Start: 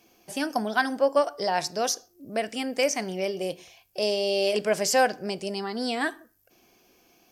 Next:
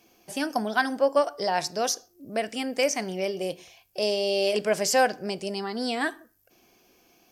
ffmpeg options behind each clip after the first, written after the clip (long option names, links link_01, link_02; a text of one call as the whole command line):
ffmpeg -i in.wav -af anull out.wav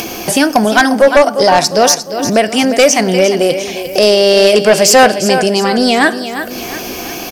ffmpeg -i in.wav -af "acompressor=mode=upward:threshold=-25dB:ratio=2.5,aecho=1:1:352|704|1056|1408|1760:0.266|0.125|0.0588|0.0276|0.013,aeval=exprs='0.376*sin(PI/2*2.24*val(0)/0.376)':channel_layout=same,volume=7dB" out.wav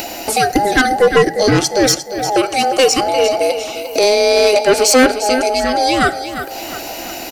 ffmpeg -i in.wav -af "afftfilt=real='real(if(between(b,1,1008),(2*floor((b-1)/48)+1)*48-b,b),0)':imag='imag(if(between(b,1,1008),(2*floor((b-1)/48)+1)*48-b,b),0)*if(between(b,1,1008),-1,1)':win_size=2048:overlap=0.75,volume=-3.5dB" out.wav